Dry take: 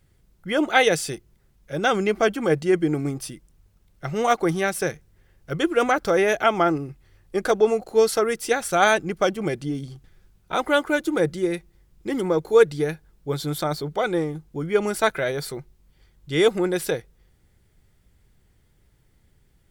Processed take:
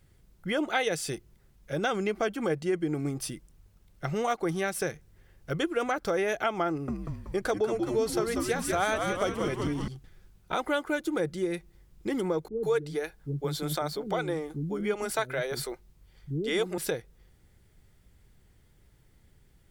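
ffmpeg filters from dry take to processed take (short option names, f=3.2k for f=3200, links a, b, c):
-filter_complex "[0:a]asettb=1/sr,asplit=3[a][b][c];[a]atrim=end=6.694[d];[b]atrim=start=6.69:end=9.88,asetpts=PTS-STARTPTS,afade=t=in:d=0.004:c=qsin,afade=t=out:st=3.186:d=0.004:c=qsin,asplit=8[e][f][g][h][i][j][k][l];[f]adelay=189,afreqshift=-90,volume=-6dB[m];[g]adelay=378,afreqshift=-180,volume=-10.9dB[n];[h]adelay=567,afreqshift=-270,volume=-15.8dB[o];[i]adelay=756,afreqshift=-360,volume=-20.6dB[p];[j]adelay=945,afreqshift=-450,volume=-25.5dB[q];[k]adelay=1134,afreqshift=-540,volume=-30.4dB[r];[l]adelay=1323,afreqshift=-630,volume=-35.3dB[s];[e][m][n][o][p][q][r][s]amix=inputs=8:normalize=0,atrim=end_sample=140679[t];[c]atrim=start=9.876[u];[d][t]acrossfade=d=0.004:c1=hsin:c2=qsin[v];[v][u]acrossfade=d=0.004:c1=qsin:c2=hsin,asettb=1/sr,asplit=3[w][x][y];[w]atrim=end=12.484[z];[x]atrim=start=12.48:end=16.78,asetpts=PTS-STARTPTS,afade=t=in:d=0.004:c=qsin,afade=t=out:st=4.296:d=0.004:c=qsin,acrossover=split=300[aa][ab];[ab]adelay=150[ac];[aa][ac]amix=inputs=2:normalize=0,atrim=end_sample=189630[ad];[y]atrim=start=16.776[ae];[z][ad]acrossfade=d=0.004:c1=hsin:c2=qsin[af];[af][ae]acrossfade=d=0.004:c1=qsin:c2=hsin,acompressor=threshold=-29dB:ratio=2.5"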